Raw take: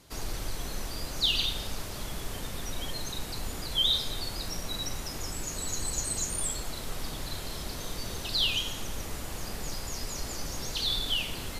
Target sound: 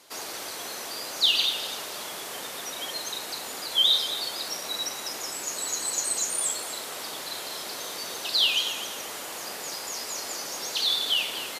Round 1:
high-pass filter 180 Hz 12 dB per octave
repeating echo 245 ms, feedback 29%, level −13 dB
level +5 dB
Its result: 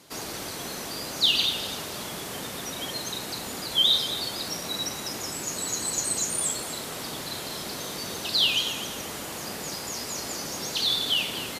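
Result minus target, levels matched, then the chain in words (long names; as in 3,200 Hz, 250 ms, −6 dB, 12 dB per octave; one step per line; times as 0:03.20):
250 Hz band +8.5 dB
high-pass filter 460 Hz 12 dB per octave
repeating echo 245 ms, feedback 29%, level −13 dB
level +5 dB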